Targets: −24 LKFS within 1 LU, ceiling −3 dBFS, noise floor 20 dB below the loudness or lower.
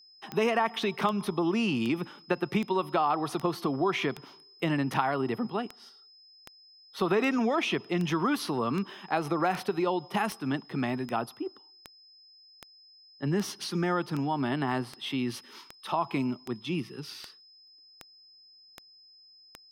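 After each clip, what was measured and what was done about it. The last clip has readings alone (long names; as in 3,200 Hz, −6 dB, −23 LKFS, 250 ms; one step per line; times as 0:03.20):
number of clicks 26; interfering tone 5,100 Hz; level of the tone −54 dBFS; integrated loudness −30.0 LKFS; sample peak −10.5 dBFS; target loudness −24.0 LKFS
→ click removal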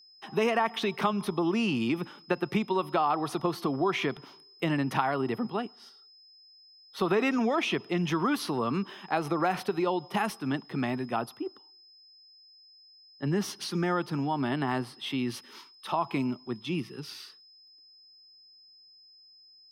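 number of clicks 0; interfering tone 5,100 Hz; level of the tone −54 dBFS
→ notch filter 5,100 Hz, Q 30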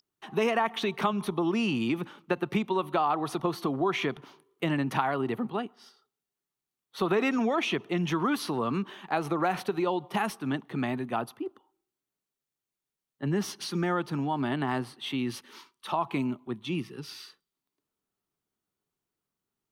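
interfering tone none found; integrated loudness −30.0 LKFS; sample peak −10.5 dBFS; target loudness −24.0 LKFS
→ level +6 dB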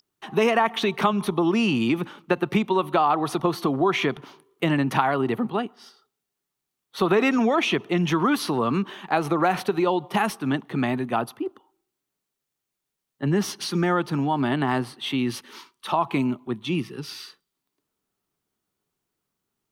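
integrated loudness −24.0 LKFS; sample peak −4.5 dBFS; background noise floor −83 dBFS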